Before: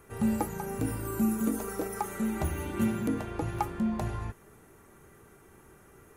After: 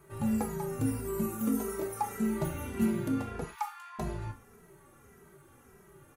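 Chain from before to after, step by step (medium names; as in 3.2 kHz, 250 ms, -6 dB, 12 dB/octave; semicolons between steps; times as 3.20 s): 3.43–3.99 s: steep high-pass 860 Hz 72 dB/octave; gated-style reverb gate 130 ms falling, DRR 4.5 dB; endless flanger 2.7 ms -1.7 Hz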